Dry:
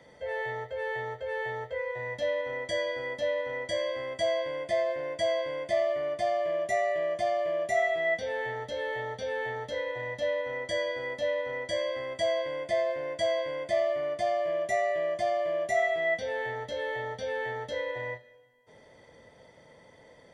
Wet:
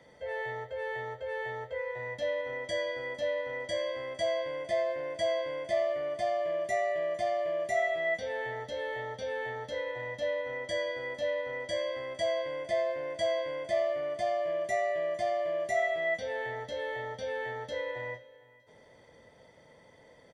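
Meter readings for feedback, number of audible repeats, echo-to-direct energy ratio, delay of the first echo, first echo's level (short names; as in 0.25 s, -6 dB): 28%, 2, -21.0 dB, 0.456 s, -21.5 dB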